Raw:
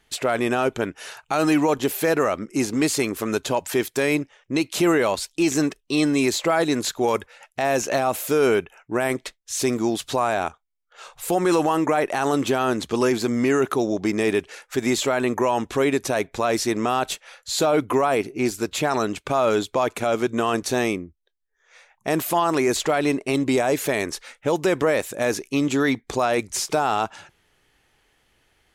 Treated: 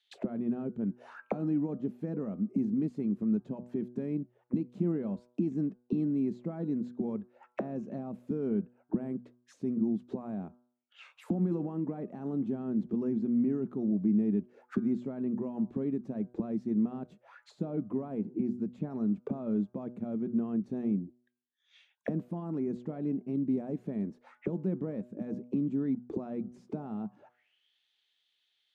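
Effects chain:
envelope filter 200–3,800 Hz, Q 6.2, down, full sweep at −23.5 dBFS
low-shelf EQ 480 Hz +6 dB
hum removal 122.1 Hz, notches 13

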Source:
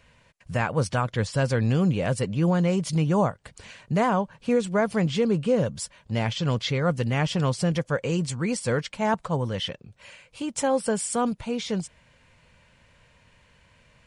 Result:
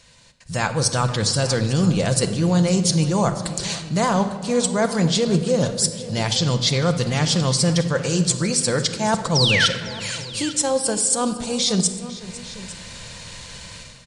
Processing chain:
flat-topped bell 6,000 Hz +14 dB
automatic gain control gain up to 15 dB
transient designer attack −3 dB, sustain −8 dB
reversed playback
downward compressor, threshold −20 dBFS, peak gain reduction 11 dB
reversed playback
sound drawn into the spectrogram fall, 0:09.35–0:09.66, 1,300–6,000 Hz −22 dBFS
on a send: multi-tap delay 502/851 ms −17.5/−18 dB
on the sum: rectangular room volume 1,800 cubic metres, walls mixed, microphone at 0.78 metres
level +2.5 dB

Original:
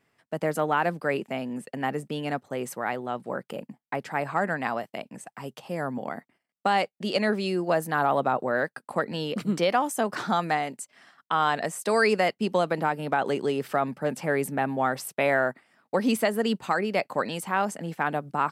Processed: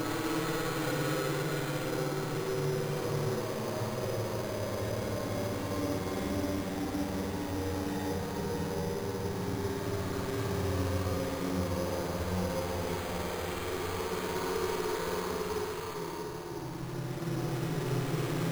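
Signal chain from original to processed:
pitch glide at a constant tempo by −9 semitones starting unshifted
low-shelf EQ 100 Hz +11.5 dB
tube saturation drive 32 dB, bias 0.7
extreme stretch with random phases 4.3×, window 1.00 s, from 0:11.89
flutter between parallel walls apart 9.4 metres, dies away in 1 s
bad sample-rate conversion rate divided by 8×, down none, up hold

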